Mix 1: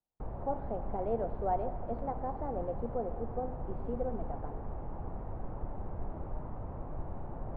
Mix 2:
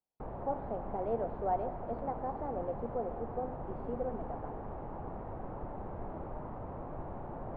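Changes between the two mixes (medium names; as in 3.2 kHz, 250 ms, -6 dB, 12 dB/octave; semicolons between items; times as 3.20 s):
background +3.5 dB; master: add bass shelf 120 Hz -11.5 dB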